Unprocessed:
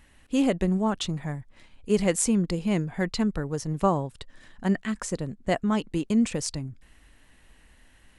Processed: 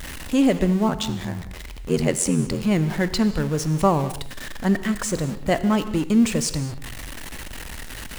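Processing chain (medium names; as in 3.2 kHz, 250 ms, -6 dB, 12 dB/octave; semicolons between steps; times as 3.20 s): jump at every zero crossing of -32.5 dBFS; 0.88–2.63 s: ring modulator 43 Hz; gated-style reverb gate 250 ms flat, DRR 11.5 dB; trim +3.5 dB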